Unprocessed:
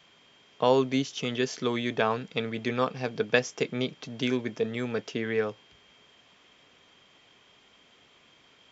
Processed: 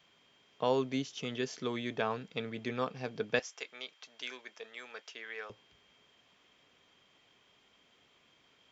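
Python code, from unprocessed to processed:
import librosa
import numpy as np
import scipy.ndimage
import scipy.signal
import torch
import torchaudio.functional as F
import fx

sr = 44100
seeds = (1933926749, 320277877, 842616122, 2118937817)

y = fx.highpass(x, sr, hz=920.0, slope=12, at=(3.39, 5.5))
y = F.gain(torch.from_numpy(y), -7.5).numpy()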